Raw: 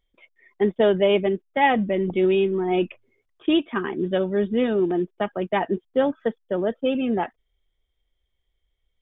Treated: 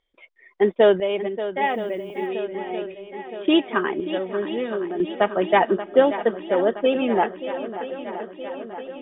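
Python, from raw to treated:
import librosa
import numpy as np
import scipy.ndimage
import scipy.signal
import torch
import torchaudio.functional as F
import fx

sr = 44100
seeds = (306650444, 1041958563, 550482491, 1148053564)

y = fx.bass_treble(x, sr, bass_db=-12, treble_db=-3)
y = fx.tremolo_random(y, sr, seeds[0], hz=1.0, depth_pct=80)
y = fx.air_absorb(y, sr, metres=72.0)
y = fx.echo_swing(y, sr, ms=970, ratio=1.5, feedback_pct=64, wet_db=-12.5)
y = fx.dmg_noise_colour(y, sr, seeds[1], colour='violet', level_db=-71.0, at=(1.61, 2.26), fade=0.02)
y = y * 10.0 ** (7.0 / 20.0)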